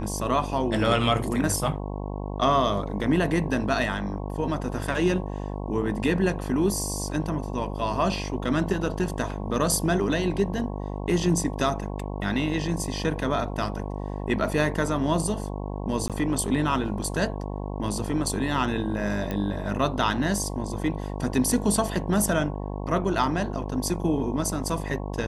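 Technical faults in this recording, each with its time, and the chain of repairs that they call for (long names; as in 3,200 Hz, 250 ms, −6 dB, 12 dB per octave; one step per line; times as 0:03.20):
mains buzz 50 Hz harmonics 22 −32 dBFS
0:16.08–0:16.10: drop-out 17 ms
0:19.31: click −16 dBFS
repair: click removal
hum removal 50 Hz, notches 22
repair the gap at 0:16.08, 17 ms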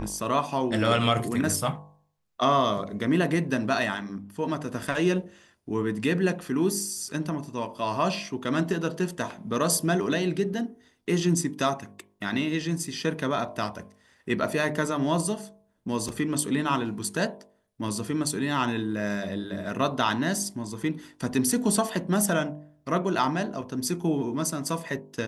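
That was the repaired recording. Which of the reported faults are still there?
none of them is left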